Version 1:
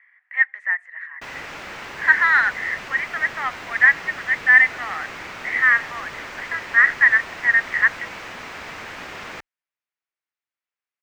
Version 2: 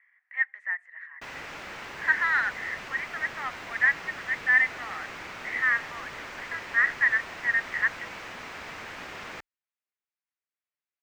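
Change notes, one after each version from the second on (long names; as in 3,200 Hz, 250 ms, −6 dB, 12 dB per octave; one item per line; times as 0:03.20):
speech −8.5 dB
background −5.0 dB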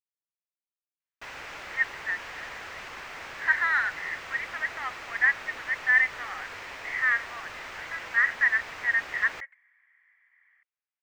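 speech: entry +1.40 s
master: add parametric band 200 Hz −7.5 dB 1.6 octaves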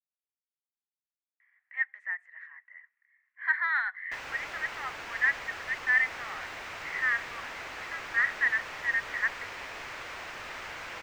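speech −3.5 dB
background: entry +2.90 s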